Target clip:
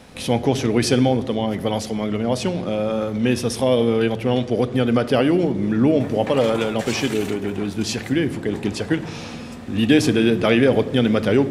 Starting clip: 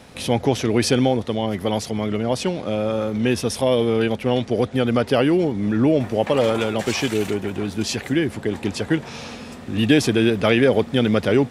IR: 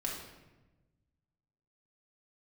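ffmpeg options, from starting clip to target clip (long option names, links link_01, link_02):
-filter_complex "[0:a]asplit=2[link_01][link_02];[1:a]atrim=start_sample=2205,lowshelf=frequency=360:gain=7[link_03];[link_02][link_03]afir=irnorm=-1:irlink=0,volume=-13dB[link_04];[link_01][link_04]amix=inputs=2:normalize=0,volume=-2dB"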